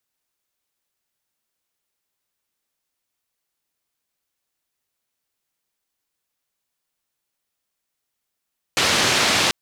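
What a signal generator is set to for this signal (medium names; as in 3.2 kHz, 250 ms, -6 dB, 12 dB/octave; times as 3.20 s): noise band 98–4700 Hz, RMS -18.5 dBFS 0.74 s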